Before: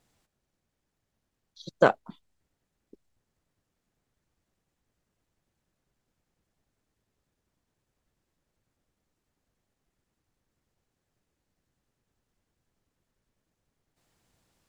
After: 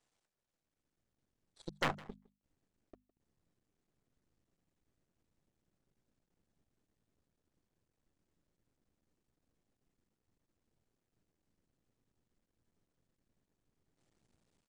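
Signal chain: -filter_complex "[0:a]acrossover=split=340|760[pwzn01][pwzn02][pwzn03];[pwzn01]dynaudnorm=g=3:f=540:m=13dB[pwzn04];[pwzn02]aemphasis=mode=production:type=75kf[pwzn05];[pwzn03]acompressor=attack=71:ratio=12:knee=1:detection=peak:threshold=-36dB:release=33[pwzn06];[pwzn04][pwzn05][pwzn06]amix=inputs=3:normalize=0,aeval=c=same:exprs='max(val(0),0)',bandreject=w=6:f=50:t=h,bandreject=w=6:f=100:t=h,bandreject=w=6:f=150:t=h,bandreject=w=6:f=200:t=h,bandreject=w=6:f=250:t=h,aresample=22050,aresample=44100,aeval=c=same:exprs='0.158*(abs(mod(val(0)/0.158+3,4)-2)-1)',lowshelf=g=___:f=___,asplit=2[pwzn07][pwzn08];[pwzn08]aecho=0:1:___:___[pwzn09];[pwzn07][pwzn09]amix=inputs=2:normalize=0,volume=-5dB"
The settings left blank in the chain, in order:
-8.5, 240, 159, 0.0794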